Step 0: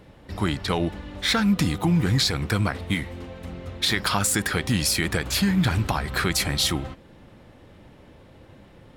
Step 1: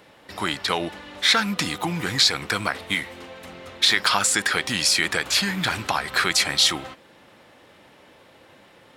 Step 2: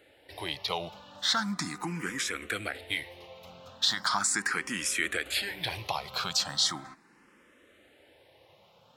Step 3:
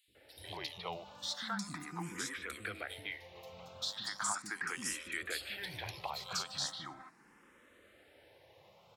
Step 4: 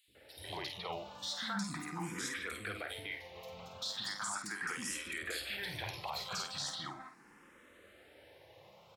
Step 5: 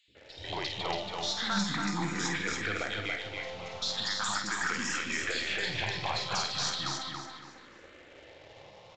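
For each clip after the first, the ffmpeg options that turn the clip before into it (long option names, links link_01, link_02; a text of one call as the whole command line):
ffmpeg -i in.wav -filter_complex "[0:a]acrossover=split=9000[link_01][link_02];[link_02]acompressor=threshold=-48dB:ratio=4:attack=1:release=60[link_03];[link_01][link_03]amix=inputs=2:normalize=0,highpass=frequency=920:poles=1,volume=6dB" out.wav
ffmpeg -i in.wav -filter_complex "[0:a]asplit=2[link_01][link_02];[link_02]afreqshift=0.38[link_03];[link_01][link_03]amix=inputs=2:normalize=1,volume=-6dB" out.wav
ffmpeg -i in.wav -filter_complex "[0:a]acompressor=threshold=-45dB:ratio=1.5,acrossover=split=280|3300[link_01][link_02][link_03];[link_01]adelay=80[link_04];[link_02]adelay=150[link_05];[link_04][link_05][link_03]amix=inputs=3:normalize=0,volume=-1.5dB" out.wav
ffmpeg -i in.wav -filter_complex "[0:a]alimiter=level_in=8dB:limit=-24dB:level=0:latency=1:release=16,volume=-8dB,asplit=2[link_01][link_02];[link_02]adelay=50,volume=-7dB[link_03];[link_01][link_03]amix=inputs=2:normalize=0,volume=2dB" out.wav
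ffmpeg -i in.wav -filter_complex "[0:a]asplit=2[link_01][link_02];[link_02]acrusher=bits=6:dc=4:mix=0:aa=0.000001,volume=-6dB[link_03];[link_01][link_03]amix=inputs=2:normalize=0,aecho=1:1:281|562|843|1124:0.631|0.196|0.0606|0.0188,aresample=16000,aresample=44100,volume=4.5dB" out.wav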